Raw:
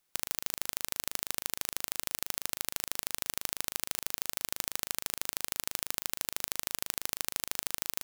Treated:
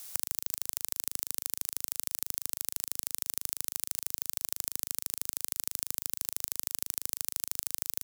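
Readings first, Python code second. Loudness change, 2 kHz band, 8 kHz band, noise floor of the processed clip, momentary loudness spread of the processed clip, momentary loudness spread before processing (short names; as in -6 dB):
+1.0 dB, -9.0 dB, +1.0 dB, -76 dBFS, 1 LU, 1 LU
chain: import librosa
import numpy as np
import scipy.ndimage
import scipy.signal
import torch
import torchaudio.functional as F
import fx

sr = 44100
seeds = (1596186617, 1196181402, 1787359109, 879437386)

y = fx.bass_treble(x, sr, bass_db=-4, treble_db=12)
y = fx.band_squash(y, sr, depth_pct=100)
y = y * librosa.db_to_amplitude(-10.0)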